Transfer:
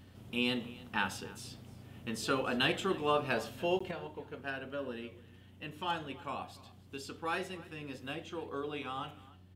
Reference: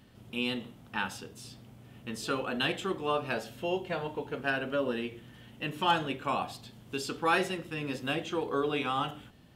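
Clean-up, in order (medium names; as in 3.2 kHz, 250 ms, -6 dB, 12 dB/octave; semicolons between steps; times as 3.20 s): de-hum 92.1 Hz, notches 4; interpolate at 3.79 s, 15 ms; inverse comb 295 ms -20.5 dB; trim 0 dB, from 3.91 s +9 dB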